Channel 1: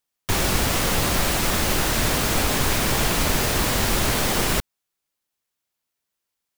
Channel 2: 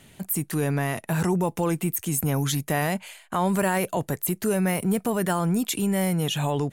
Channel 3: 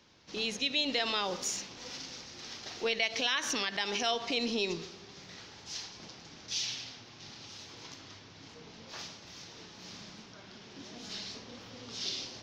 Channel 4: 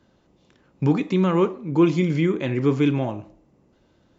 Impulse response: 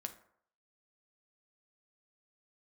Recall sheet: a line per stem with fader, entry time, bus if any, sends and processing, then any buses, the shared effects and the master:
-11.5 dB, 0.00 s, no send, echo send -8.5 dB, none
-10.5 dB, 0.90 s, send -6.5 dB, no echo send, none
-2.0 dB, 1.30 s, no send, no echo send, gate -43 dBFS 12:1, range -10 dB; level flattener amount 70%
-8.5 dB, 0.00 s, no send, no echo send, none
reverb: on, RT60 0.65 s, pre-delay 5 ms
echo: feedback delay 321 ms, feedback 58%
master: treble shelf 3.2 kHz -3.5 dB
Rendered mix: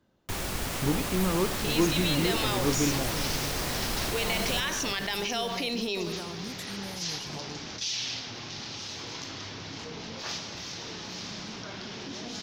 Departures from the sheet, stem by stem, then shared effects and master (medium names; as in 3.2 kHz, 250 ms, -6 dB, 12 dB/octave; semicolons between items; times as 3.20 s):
stem 2 -10.5 dB -> -20.0 dB; master: missing treble shelf 3.2 kHz -3.5 dB